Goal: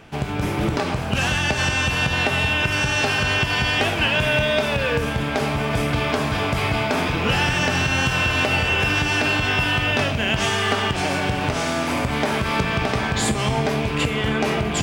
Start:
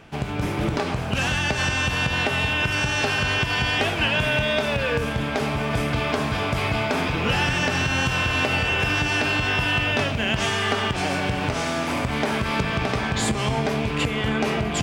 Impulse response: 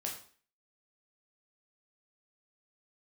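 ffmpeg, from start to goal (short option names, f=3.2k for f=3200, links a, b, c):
-filter_complex "[0:a]asplit=2[a][b];[1:a]atrim=start_sample=2205,highshelf=f=7.5k:g=10[c];[b][c]afir=irnorm=-1:irlink=0,volume=-10dB[d];[a][d]amix=inputs=2:normalize=0"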